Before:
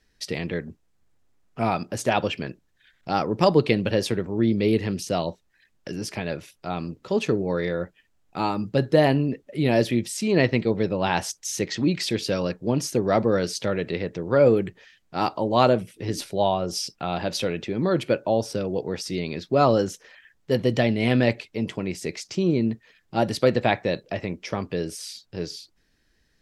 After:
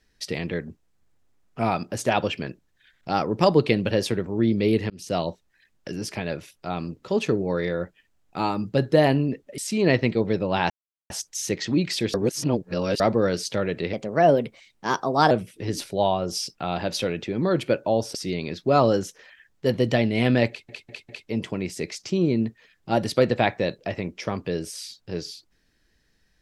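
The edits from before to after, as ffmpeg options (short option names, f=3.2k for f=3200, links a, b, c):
-filter_complex "[0:a]asplit=12[a][b][c][d][e][f][g][h][i][j][k][l];[a]atrim=end=4.9,asetpts=PTS-STARTPTS,afade=t=out:st=4.896:d=0.004:c=hsin[m];[b]atrim=start=4.9:end=9.582,asetpts=PTS-STARTPTS,afade=t=in:d=0.26[n];[c]atrim=start=10.078:end=11.2,asetpts=PTS-STARTPTS,afade=t=out:st=1.118:d=0.004:c=hsin,apad=pad_dur=0.4[o];[d]atrim=start=11.2:end=12.242,asetpts=PTS-STARTPTS,afade=t=in:d=0.004:c=hsin[p];[e]atrim=start=12.238:end=13.102,asetpts=PTS-STARTPTS,areverse[q];[f]atrim=start=13.098:end=14.034[r];[g]atrim=start=14.03:end=15.71,asetpts=PTS-STARTPTS,asetrate=53802,aresample=44100[s];[h]atrim=start=15.706:end=18.552[t];[i]atrim=start=18.998:end=21.542[u];[j]atrim=start=21.338:end=21.542[v];[k]atrim=start=21.338:end=21.542[w];[l]atrim=start=21.338[x];[m][n]concat=n=2:v=0:a=1[y];[o][p]concat=n=2:v=0:a=1[z];[y][z]acrossfade=d=0.004:c1=hsin:c2=hsin[aa];[aa][q]acrossfade=d=0.004:c1=hsin:c2=hsin[ab];[ab][r]acrossfade=d=0.004:c1=hsin:c2=hsin[ac];[ac][s]acrossfade=d=0.004:c1=hsin:c2=hsin[ad];[ad][t]acrossfade=d=0.004:c1=hsin:c2=hsin[ae];[ae][u]acrossfade=d=0.004:c1=hsin:c2=hsin[af];[af][v]acrossfade=d=0.004:c1=hsin:c2=hsin[ag];[ag][w]acrossfade=d=0.004:c1=hsin:c2=hsin[ah];[ah][x]acrossfade=d=0.004:c1=hsin:c2=hsin"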